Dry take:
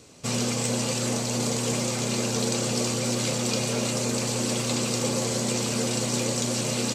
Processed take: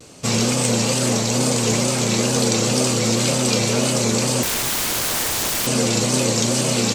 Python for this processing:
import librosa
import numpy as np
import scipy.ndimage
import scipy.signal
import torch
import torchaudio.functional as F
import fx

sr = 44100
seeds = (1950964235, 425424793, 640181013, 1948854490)

y = fx.overflow_wrap(x, sr, gain_db=24.5, at=(4.43, 5.67))
y = fx.wow_flutter(y, sr, seeds[0], rate_hz=2.1, depth_cents=94.0)
y = F.gain(torch.from_numpy(y), 7.5).numpy()